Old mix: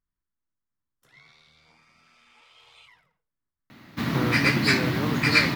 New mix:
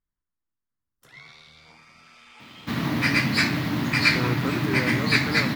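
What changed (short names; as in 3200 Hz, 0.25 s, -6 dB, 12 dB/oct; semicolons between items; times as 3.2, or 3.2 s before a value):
first sound +8.0 dB; second sound: entry -1.30 s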